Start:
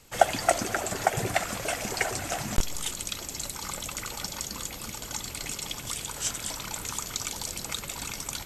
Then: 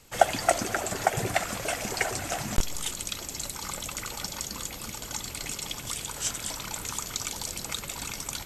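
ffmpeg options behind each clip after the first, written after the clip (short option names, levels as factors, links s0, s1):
-af anull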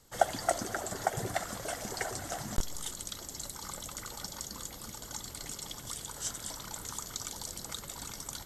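-af "equalizer=f=2500:t=o:w=0.34:g=-13,volume=0.501"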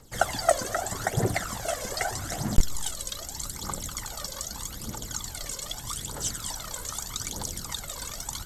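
-af "aphaser=in_gain=1:out_gain=1:delay=2:decay=0.62:speed=0.81:type=triangular,volume=1.58"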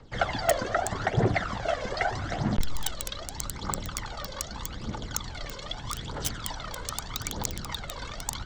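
-filter_complex "[0:a]volume=8.91,asoftclip=hard,volume=0.112,acrossover=split=310|510|4400[s0][s1][s2][s3];[s3]acrusher=bits=3:mix=0:aa=0.000001[s4];[s0][s1][s2][s4]amix=inputs=4:normalize=0,volume=1.41"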